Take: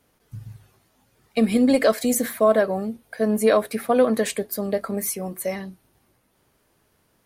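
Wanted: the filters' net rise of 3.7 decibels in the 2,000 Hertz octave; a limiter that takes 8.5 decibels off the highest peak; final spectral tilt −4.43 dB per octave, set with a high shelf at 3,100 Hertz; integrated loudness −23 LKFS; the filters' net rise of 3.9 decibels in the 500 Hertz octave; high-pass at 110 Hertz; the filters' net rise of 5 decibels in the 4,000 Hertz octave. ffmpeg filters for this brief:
ffmpeg -i in.wav -af "highpass=110,equalizer=frequency=500:width_type=o:gain=4.5,equalizer=frequency=2000:width_type=o:gain=4,highshelf=frequency=3100:gain=-4.5,equalizer=frequency=4000:width_type=o:gain=8,volume=-0.5dB,alimiter=limit=-12dB:level=0:latency=1" out.wav

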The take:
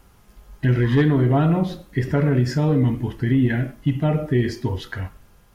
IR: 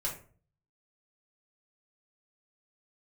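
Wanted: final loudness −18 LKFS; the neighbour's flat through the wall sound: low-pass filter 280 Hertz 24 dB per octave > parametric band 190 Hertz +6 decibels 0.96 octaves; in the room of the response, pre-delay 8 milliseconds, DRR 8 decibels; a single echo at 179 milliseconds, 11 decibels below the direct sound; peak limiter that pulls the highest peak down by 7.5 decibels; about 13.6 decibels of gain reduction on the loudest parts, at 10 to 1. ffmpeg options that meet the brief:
-filter_complex "[0:a]acompressor=threshold=-28dB:ratio=10,alimiter=level_in=2dB:limit=-24dB:level=0:latency=1,volume=-2dB,aecho=1:1:179:0.282,asplit=2[link_01][link_02];[1:a]atrim=start_sample=2205,adelay=8[link_03];[link_02][link_03]afir=irnorm=-1:irlink=0,volume=-11.5dB[link_04];[link_01][link_04]amix=inputs=2:normalize=0,lowpass=frequency=280:width=0.5412,lowpass=frequency=280:width=1.3066,equalizer=frequency=190:width_type=o:width=0.96:gain=6,volume=14dB"

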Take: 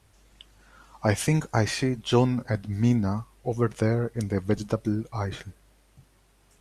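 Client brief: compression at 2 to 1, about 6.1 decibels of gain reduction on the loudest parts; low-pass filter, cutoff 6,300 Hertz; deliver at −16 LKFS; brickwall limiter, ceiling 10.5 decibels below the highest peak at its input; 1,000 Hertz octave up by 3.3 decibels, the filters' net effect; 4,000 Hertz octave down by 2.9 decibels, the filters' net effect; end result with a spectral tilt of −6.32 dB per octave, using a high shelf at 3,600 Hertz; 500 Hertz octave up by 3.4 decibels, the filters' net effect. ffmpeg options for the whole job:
ffmpeg -i in.wav -af "lowpass=6300,equalizer=frequency=500:width_type=o:gain=3.5,equalizer=frequency=1000:width_type=o:gain=3,highshelf=frequency=3600:gain=4.5,equalizer=frequency=4000:width_type=o:gain=-6.5,acompressor=threshold=-24dB:ratio=2,volume=15dB,alimiter=limit=-3.5dB:level=0:latency=1" out.wav

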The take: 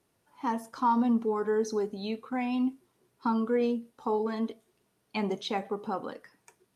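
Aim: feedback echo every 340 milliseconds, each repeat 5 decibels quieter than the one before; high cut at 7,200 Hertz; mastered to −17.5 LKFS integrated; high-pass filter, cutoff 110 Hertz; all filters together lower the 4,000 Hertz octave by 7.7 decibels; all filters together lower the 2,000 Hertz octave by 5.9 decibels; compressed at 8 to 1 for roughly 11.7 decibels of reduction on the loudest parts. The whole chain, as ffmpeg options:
ffmpeg -i in.wav -af "highpass=110,lowpass=7200,equalizer=frequency=2000:width_type=o:gain=-6,equalizer=frequency=4000:width_type=o:gain=-7,acompressor=threshold=-35dB:ratio=8,aecho=1:1:340|680|1020|1360|1700|2040|2380:0.562|0.315|0.176|0.0988|0.0553|0.031|0.0173,volume=21.5dB" out.wav

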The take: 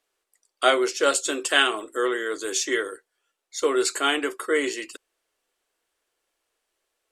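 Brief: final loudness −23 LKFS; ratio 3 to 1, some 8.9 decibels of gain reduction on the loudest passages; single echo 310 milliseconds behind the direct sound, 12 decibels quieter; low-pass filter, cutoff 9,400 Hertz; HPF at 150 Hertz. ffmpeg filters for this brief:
ffmpeg -i in.wav -af "highpass=150,lowpass=9400,acompressor=threshold=-26dB:ratio=3,aecho=1:1:310:0.251,volume=6.5dB" out.wav

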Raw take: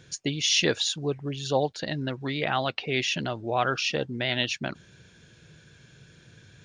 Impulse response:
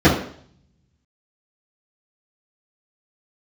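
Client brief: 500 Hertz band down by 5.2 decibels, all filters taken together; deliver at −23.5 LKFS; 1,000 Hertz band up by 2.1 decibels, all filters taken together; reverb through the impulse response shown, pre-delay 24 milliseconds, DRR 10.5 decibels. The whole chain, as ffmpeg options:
-filter_complex "[0:a]equalizer=frequency=500:width_type=o:gain=-8.5,equalizer=frequency=1000:width_type=o:gain=6.5,asplit=2[link_01][link_02];[1:a]atrim=start_sample=2205,adelay=24[link_03];[link_02][link_03]afir=irnorm=-1:irlink=0,volume=-35.5dB[link_04];[link_01][link_04]amix=inputs=2:normalize=0,volume=3dB"

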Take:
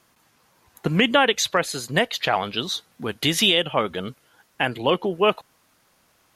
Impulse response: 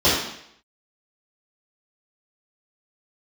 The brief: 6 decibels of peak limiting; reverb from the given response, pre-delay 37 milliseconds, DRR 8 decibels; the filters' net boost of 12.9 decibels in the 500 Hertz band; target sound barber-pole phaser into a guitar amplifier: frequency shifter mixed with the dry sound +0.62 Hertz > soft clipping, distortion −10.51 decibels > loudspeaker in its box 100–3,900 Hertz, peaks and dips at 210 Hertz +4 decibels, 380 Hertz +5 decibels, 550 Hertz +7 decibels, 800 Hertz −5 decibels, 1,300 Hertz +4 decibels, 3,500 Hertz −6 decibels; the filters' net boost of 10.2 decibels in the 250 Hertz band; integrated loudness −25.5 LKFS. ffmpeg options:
-filter_complex "[0:a]equalizer=frequency=250:width_type=o:gain=7.5,equalizer=frequency=500:width_type=o:gain=7.5,alimiter=limit=-6dB:level=0:latency=1,asplit=2[link_01][link_02];[1:a]atrim=start_sample=2205,adelay=37[link_03];[link_02][link_03]afir=irnorm=-1:irlink=0,volume=-29dB[link_04];[link_01][link_04]amix=inputs=2:normalize=0,asplit=2[link_05][link_06];[link_06]afreqshift=0.62[link_07];[link_05][link_07]amix=inputs=2:normalize=1,asoftclip=threshold=-17.5dB,highpass=100,equalizer=frequency=210:width_type=q:width=4:gain=4,equalizer=frequency=380:width_type=q:width=4:gain=5,equalizer=frequency=550:width_type=q:width=4:gain=7,equalizer=frequency=800:width_type=q:width=4:gain=-5,equalizer=frequency=1300:width_type=q:width=4:gain=4,equalizer=frequency=3500:width_type=q:width=4:gain=-6,lowpass=frequency=3900:width=0.5412,lowpass=frequency=3900:width=1.3066,volume=-4dB"

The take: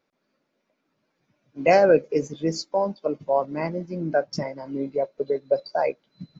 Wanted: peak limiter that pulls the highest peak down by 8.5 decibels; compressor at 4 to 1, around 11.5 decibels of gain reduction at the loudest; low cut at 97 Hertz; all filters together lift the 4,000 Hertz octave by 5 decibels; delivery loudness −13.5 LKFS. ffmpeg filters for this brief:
ffmpeg -i in.wav -af "highpass=97,equalizer=frequency=4000:width_type=o:gain=6.5,acompressor=threshold=-26dB:ratio=4,volume=21.5dB,alimiter=limit=-2.5dB:level=0:latency=1" out.wav

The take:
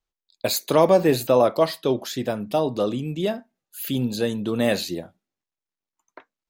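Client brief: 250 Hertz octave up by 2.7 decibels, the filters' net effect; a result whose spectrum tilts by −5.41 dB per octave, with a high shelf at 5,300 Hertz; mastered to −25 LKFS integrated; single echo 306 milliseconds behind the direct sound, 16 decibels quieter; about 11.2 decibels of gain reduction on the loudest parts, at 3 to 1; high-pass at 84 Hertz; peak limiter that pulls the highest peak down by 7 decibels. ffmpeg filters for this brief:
ffmpeg -i in.wav -af "highpass=84,equalizer=frequency=250:width_type=o:gain=3.5,highshelf=frequency=5300:gain=-5.5,acompressor=threshold=-27dB:ratio=3,alimiter=limit=-20.5dB:level=0:latency=1,aecho=1:1:306:0.158,volume=6.5dB" out.wav

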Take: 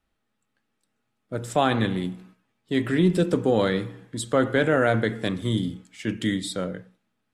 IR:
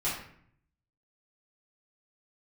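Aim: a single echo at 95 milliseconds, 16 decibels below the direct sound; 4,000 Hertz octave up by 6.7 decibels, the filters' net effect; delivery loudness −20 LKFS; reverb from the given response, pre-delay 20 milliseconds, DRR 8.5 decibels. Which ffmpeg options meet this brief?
-filter_complex "[0:a]equalizer=frequency=4000:width_type=o:gain=8,aecho=1:1:95:0.158,asplit=2[link_01][link_02];[1:a]atrim=start_sample=2205,adelay=20[link_03];[link_02][link_03]afir=irnorm=-1:irlink=0,volume=-16dB[link_04];[link_01][link_04]amix=inputs=2:normalize=0,volume=3dB"

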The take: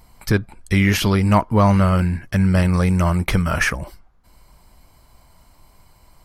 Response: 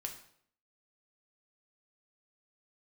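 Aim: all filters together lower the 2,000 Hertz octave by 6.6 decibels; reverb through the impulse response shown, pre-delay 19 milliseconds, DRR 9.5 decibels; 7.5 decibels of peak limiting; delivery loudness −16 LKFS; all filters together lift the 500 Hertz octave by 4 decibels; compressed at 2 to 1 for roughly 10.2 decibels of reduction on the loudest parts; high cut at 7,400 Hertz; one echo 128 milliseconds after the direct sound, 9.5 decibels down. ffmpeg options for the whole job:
-filter_complex "[0:a]lowpass=7400,equalizer=frequency=500:width_type=o:gain=5.5,equalizer=frequency=2000:width_type=o:gain=-8.5,acompressor=threshold=-29dB:ratio=2,alimiter=limit=-19.5dB:level=0:latency=1,aecho=1:1:128:0.335,asplit=2[link_01][link_02];[1:a]atrim=start_sample=2205,adelay=19[link_03];[link_02][link_03]afir=irnorm=-1:irlink=0,volume=-8dB[link_04];[link_01][link_04]amix=inputs=2:normalize=0,volume=12.5dB"

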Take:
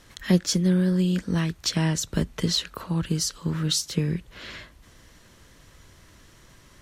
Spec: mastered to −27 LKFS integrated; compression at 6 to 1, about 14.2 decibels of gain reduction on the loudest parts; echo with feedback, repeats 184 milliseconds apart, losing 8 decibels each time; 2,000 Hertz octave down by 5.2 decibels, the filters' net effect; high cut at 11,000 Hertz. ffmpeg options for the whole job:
ffmpeg -i in.wav -af "lowpass=11000,equalizer=frequency=2000:width_type=o:gain=-6.5,acompressor=threshold=-31dB:ratio=6,aecho=1:1:184|368|552|736|920:0.398|0.159|0.0637|0.0255|0.0102,volume=7.5dB" out.wav

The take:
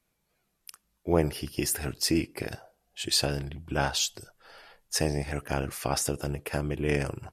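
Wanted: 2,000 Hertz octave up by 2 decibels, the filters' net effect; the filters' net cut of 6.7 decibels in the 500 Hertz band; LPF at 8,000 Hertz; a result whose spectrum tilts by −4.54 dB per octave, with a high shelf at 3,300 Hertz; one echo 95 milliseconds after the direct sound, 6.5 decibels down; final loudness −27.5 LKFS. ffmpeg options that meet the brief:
ffmpeg -i in.wav -af "lowpass=8000,equalizer=frequency=500:width_type=o:gain=-9,equalizer=frequency=2000:width_type=o:gain=6,highshelf=frequency=3300:gain=-8,aecho=1:1:95:0.473,volume=4dB" out.wav

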